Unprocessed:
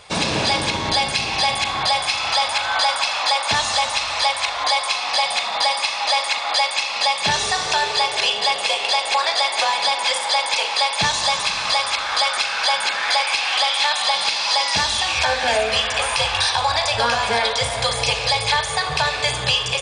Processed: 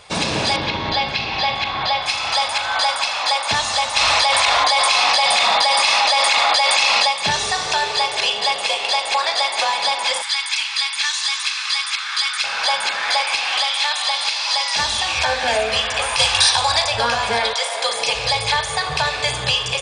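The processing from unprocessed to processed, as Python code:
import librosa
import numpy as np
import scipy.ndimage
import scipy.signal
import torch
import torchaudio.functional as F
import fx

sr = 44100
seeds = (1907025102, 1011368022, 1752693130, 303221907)

y = fx.lowpass(x, sr, hz=4500.0, slope=24, at=(0.56, 2.06))
y = fx.env_flatten(y, sr, amount_pct=100, at=(3.96, 7.09))
y = fx.highpass(y, sr, hz=1300.0, slope=24, at=(10.22, 12.44))
y = fx.highpass(y, sr, hz=890.0, slope=6, at=(13.6, 14.79))
y = fx.high_shelf(y, sr, hz=fx.line((16.18, 3700.0), (16.83, 5400.0)), db=12.0, at=(16.18, 16.83), fade=0.02)
y = fx.highpass(y, sr, hz=fx.line((17.53, 620.0), (18.14, 180.0)), slope=24, at=(17.53, 18.14), fade=0.02)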